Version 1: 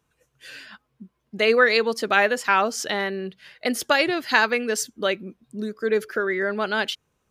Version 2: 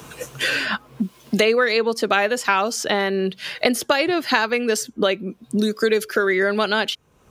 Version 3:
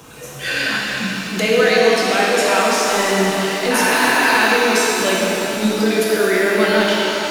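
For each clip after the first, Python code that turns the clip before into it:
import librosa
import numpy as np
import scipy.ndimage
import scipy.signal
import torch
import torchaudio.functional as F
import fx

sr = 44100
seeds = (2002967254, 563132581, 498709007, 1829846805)

y1 = fx.peak_eq(x, sr, hz=1800.0, db=-3.5, octaves=0.7)
y1 = fx.band_squash(y1, sr, depth_pct=100)
y1 = y1 * librosa.db_to_amplitude(3.0)
y2 = fx.transient(y1, sr, attack_db=-7, sustain_db=5)
y2 = fx.spec_repair(y2, sr, seeds[0], start_s=3.73, length_s=0.58, low_hz=310.0, high_hz=2800.0, source='after')
y2 = fx.rev_shimmer(y2, sr, seeds[1], rt60_s=3.6, semitones=7, shimmer_db=-8, drr_db=-5.0)
y2 = y2 * librosa.db_to_amplitude(-2.0)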